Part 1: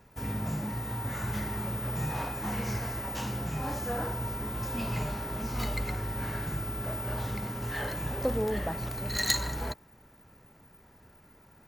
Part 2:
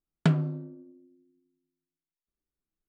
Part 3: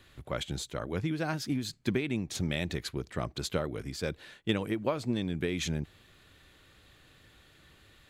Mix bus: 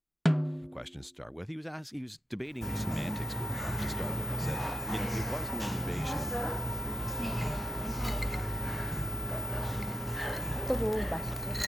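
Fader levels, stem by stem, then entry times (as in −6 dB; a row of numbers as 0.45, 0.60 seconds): −0.5, −1.5, −7.5 decibels; 2.45, 0.00, 0.45 seconds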